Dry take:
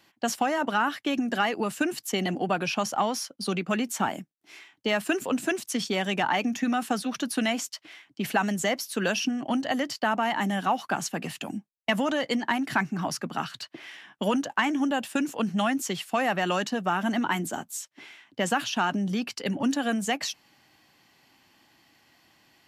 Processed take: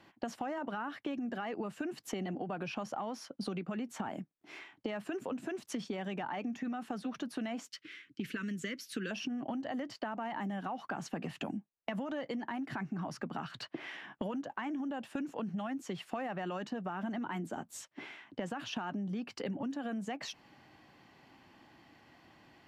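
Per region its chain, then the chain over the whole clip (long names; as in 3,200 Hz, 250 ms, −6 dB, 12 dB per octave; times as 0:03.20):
0:07.68–0:09.11: Butterworth band-reject 780 Hz, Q 0.69 + low-shelf EQ 340 Hz −6 dB
whole clip: low-pass filter 1,200 Hz 6 dB per octave; brickwall limiter −22.5 dBFS; downward compressor 10 to 1, threshold −40 dBFS; level +5 dB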